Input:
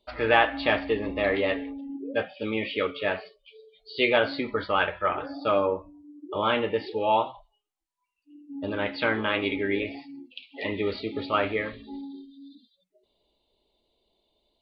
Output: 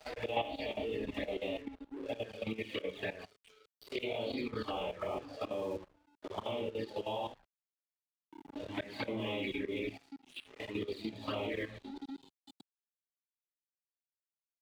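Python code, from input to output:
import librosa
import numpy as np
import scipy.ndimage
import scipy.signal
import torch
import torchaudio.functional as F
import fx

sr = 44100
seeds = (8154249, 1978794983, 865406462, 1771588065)

y = fx.phase_scramble(x, sr, seeds[0], window_ms=200)
y = fx.env_flanger(y, sr, rest_ms=6.8, full_db=-22.5)
y = fx.peak_eq(y, sr, hz=1400.0, db=-12.5, octaves=0.51)
y = fx.hum_notches(y, sr, base_hz=50, count=7)
y = fx.auto_swell(y, sr, attack_ms=122.0)
y = fx.doubler(y, sr, ms=27.0, db=-11)
y = fx.level_steps(y, sr, step_db=12)
y = fx.lowpass(y, sr, hz=2300.0, slope=6, at=(4.71, 6.94))
y = np.sign(y) * np.maximum(np.abs(y) - 10.0 ** (-59.0 / 20.0), 0.0)
y = fx.band_squash(y, sr, depth_pct=70)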